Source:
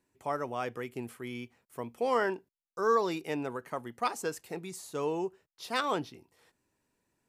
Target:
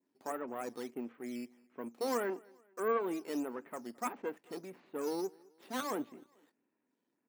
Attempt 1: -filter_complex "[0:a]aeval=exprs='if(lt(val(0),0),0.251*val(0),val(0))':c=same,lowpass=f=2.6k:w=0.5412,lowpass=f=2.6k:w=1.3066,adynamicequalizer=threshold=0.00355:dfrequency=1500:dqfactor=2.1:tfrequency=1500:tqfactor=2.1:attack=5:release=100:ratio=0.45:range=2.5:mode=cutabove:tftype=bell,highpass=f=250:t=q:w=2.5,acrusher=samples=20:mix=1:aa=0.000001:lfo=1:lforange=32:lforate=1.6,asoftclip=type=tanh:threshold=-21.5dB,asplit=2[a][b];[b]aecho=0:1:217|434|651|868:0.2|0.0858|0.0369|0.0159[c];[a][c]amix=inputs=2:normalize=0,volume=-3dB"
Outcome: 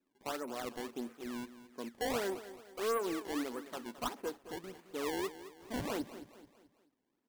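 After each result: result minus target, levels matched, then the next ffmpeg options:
soft clip: distortion +18 dB; decimation with a swept rate: distortion +12 dB; echo-to-direct +11.5 dB
-filter_complex "[0:a]aeval=exprs='if(lt(val(0),0),0.251*val(0),val(0))':c=same,lowpass=f=2.6k:w=0.5412,lowpass=f=2.6k:w=1.3066,adynamicequalizer=threshold=0.00355:dfrequency=1500:dqfactor=2.1:tfrequency=1500:tqfactor=2.1:attack=5:release=100:ratio=0.45:range=2.5:mode=cutabove:tftype=bell,highpass=f=250:t=q:w=2.5,acrusher=samples=20:mix=1:aa=0.000001:lfo=1:lforange=32:lforate=1.6,asoftclip=type=tanh:threshold=-11dB,asplit=2[a][b];[b]aecho=0:1:217|434|651|868:0.2|0.0858|0.0369|0.0159[c];[a][c]amix=inputs=2:normalize=0,volume=-3dB"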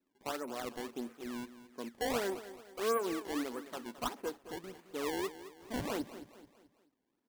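decimation with a swept rate: distortion +12 dB; echo-to-direct +11.5 dB
-filter_complex "[0:a]aeval=exprs='if(lt(val(0),0),0.251*val(0),val(0))':c=same,lowpass=f=2.6k:w=0.5412,lowpass=f=2.6k:w=1.3066,adynamicequalizer=threshold=0.00355:dfrequency=1500:dqfactor=2.1:tfrequency=1500:tqfactor=2.1:attack=5:release=100:ratio=0.45:range=2.5:mode=cutabove:tftype=bell,highpass=f=250:t=q:w=2.5,acrusher=samples=5:mix=1:aa=0.000001:lfo=1:lforange=8:lforate=1.6,asoftclip=type=tanh:threshold=-11dB,asplit=2[a][b];[b]aecho=0:1:217|434|651|868:0.2|0.0858|0.0369|0.0159[c];[a][c]amix=inputs=2:normalize=0,volume=-3dB"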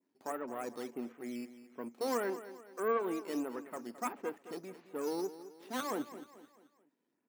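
echo-to-direct +11.5 dB
-filter_complex "[0:a]aeval=exprs='if(lt(val(0),0),0.251*val(0),val(0))':c=same,lowpass=f=2.6k:w=0.5412,lowpass=f=2.6k:w=1.3066,adynamicequalizer=threshold=0.00355:dfrequency=1500:dqfactor=2.1:tfrequency=1500:tqfactor=2.1:attack=5:release=100:ratio=0.45:range=2.5:mode=cutabove:tftype=bell,highpass=f=250:t=q:w=2.5,acrusher=samples=5:mix=1:aa=0.000001:lfo=1:lforange=8:lforate=1.6,asoftclip=type=tanh:threshold=-11dB,asplit=2[a][b];[b]aecho=0:1:217|434:0.0531|0.0228[c];[a][c]amix=inputs=2:normalize=0,volume=-3dB"

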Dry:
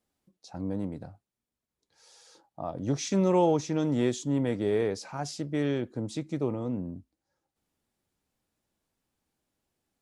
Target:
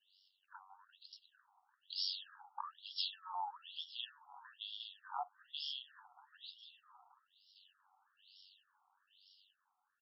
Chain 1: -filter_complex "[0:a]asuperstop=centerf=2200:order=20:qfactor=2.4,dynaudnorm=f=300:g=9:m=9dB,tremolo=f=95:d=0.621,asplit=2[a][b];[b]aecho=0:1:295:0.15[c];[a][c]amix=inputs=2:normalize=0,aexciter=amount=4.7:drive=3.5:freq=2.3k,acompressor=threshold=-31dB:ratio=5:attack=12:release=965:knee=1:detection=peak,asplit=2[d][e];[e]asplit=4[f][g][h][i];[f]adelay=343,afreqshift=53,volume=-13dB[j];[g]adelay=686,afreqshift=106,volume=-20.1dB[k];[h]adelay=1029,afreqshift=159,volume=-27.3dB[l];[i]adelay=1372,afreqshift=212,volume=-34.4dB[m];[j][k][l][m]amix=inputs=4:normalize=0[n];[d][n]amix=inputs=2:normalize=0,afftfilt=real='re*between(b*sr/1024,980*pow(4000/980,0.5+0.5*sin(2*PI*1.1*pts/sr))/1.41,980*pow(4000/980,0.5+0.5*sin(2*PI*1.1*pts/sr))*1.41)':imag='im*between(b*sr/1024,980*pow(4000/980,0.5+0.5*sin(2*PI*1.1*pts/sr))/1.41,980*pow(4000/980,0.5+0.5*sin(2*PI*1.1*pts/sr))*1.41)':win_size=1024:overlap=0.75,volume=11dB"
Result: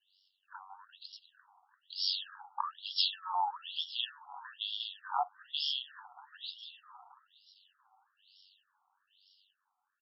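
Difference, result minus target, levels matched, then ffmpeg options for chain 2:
compressor: peak gain reduction -9 dB
-filter_complex "[0:a]asuperstop=centerf=2200:order=20:qfactor=2.4,dynaudnorm=f=300:g=9:m=9dB,tremolo=f=95:d=0.621,asplit=2[a][b];[b]aecho=0:1:295:0.15[c];[a][c]amix=inputs=2:normalize=0,aexciter=amount=4.7:drive=3.5:freq=2.3k,acompressor=threshold=-42.5dB:ratio=5:attack=12:release=965:knee=1:detection=peak,asplit=2[d][e];[e]asplit=4[f][g][h][i];[f]adelay=343,afreqshift=53,volume=-13dB[j];[g]adelay=686,afreqshift=106,volume=-20.1dB[k];[h]adelay=1029,afreqshift=159,volume=-27.3dB[l];[i]adelay=1372,afreqshift=212,volume=-34.4dB[m];[j][k][l][m]amix=inputs=4:normalize=0[n];[d][n]amix=inputs=2:normalize=0,afftfilt=real='re*between(b*sr/1024,980*pow(4000/980,0.5+0.5*sin(2*PI*1.1*pts/sr))/1.41,980*pow(4000/980,0.5+0.5*sin(2*PI*1.1*pts/sr))*1.41)':imag='im*between(b*sr/1024,980*pow(4000/980,0.5+0.5*sin(2*PI*1.1*pts/sr))/1.41,980*pow(4000/980,0.5+0.5*sin(2*PI*1.1*pts/sr))*1.41)':win_size=1024:overlap=0.75,volume=11dB"

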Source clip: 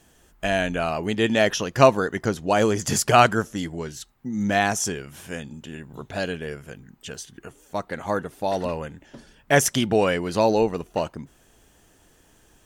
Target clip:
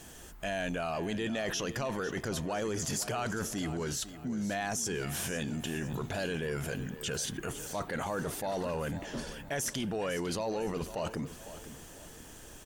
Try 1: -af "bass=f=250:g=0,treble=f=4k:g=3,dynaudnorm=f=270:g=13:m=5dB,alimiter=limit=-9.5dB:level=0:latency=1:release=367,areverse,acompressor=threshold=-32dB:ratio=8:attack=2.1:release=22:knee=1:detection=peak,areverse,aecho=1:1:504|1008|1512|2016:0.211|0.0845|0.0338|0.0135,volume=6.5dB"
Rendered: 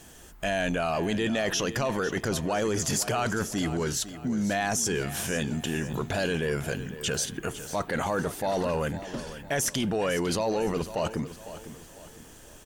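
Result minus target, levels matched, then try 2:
compressor: peak gain reduction -6.5 dB
-af "bass=f=250:g=0,treble=f=4k:g=3,dynaudnorm=f=270:g=13:m=5dB,alimiter=limit=-9.5dB:level=0:latency=1:release=367,areverse,acompressor=threshold=-39.5dB:ratio=8:attack=2.1:release=22:knee=1:detection=peak,areverse,aecho=1:1:504|1008|1512|2016:0.211|0.0845|0.0338|0.0135,volume=6.5dB"

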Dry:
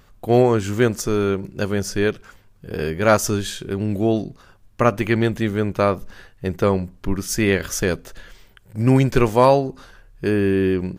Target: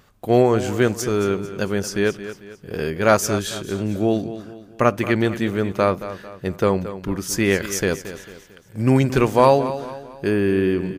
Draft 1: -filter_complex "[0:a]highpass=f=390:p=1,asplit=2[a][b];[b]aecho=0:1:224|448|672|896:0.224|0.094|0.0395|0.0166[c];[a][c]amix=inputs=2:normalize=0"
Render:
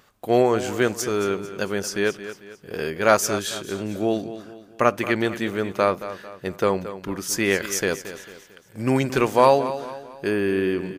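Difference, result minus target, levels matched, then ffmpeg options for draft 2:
125 Hz band -5.5 dB
-filter_complex "[0:a]highpass=f=100:p=1,asplit=2[a][b];[b]aecho=0:1:224|448|672|896:0.224|0.094|0.0395|0.0166[c];[a][c]amix=inputs=2:normalize=0"

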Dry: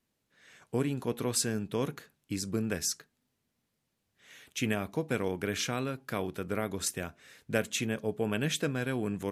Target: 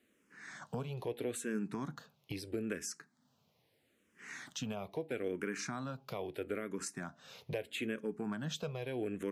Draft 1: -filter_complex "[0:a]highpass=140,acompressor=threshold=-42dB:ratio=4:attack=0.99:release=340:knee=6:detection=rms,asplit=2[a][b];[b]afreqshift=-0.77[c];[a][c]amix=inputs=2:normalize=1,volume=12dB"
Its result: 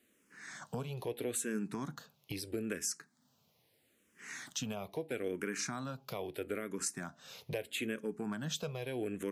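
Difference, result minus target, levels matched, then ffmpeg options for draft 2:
8000 Hz band +5.0 dB
-filter_complex "[0:a]highpass=140,acompressor=threshold=-42dB:ratio=4:attack=0.99:release=340:knee=6:detection=rms,highshelf=f=5.5k:g=-9.5,asplit=2[a][b];[b]afreqshift=-0.77[c];[a][c]amix=inputs=2:normalize=1,volume=12dB"

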